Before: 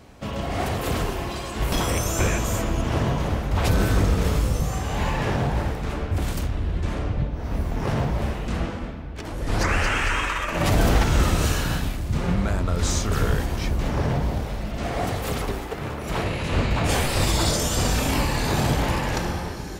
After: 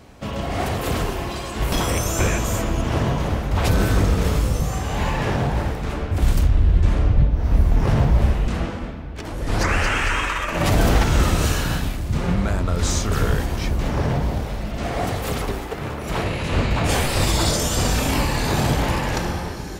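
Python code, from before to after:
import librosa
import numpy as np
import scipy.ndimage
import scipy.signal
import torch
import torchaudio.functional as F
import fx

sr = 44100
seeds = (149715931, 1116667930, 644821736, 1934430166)

y = fx.low_shelf(x, sr, hz=97.0, db=11.5, at=(6.22, 8.48))
y = y * librosa.db_to_amplitude(2.0)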